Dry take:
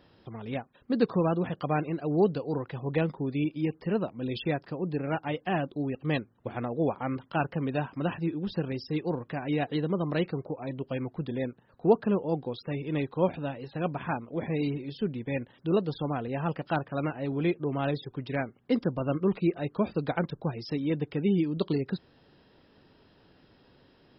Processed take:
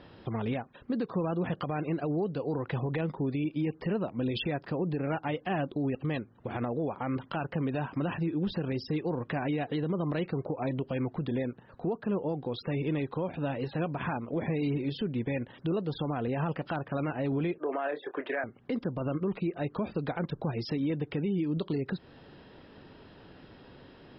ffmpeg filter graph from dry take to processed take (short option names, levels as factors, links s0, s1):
-filter_complex "[0:a]asettb=1/sr,asplit=3[s0][s1][s2];[s0]atrim=end=17.584[s3];[s1]atrim=start=17.58:end=18.44,asetpts=PTS-STARTPTS,afade=t=in:d=0.004:c=qsin,afade=t=out:st=0.856:d=0.004:c=qsin,highpass=f=350:w=0.5412,highpass=f=350:w=1.3066,equalizer=f=640:t=q:w=4:g=7,equalizer=f=1200:t=q:w=4:g=3,equalizer=f=1700:t=q:w=4:g=9,lowpass=f=2800:w=0.5412,lowpass=f=2800:w=1.3066,asplit=2[s4][s5];[s5]adelay=26,volume=0.316[s6];[s4][s6]amix=inputs=2:normalize=0,atrim=end_sample=37926[s7];[s2]atrim=start=18.436[s8];[s3][s7]acrossfade=d=0.004:c1=hsin:c2=qsin[s9];[s9][s8]acrossfade=d=0.004:c1=qsin:c2=hsin,lowpass=3800,acompressor=threshold=0.0224:ratio=6,alimiter=level_in=2.24:limit=0.0631:level=0:latency=1:release=47,volume=0.447,volume=2.51"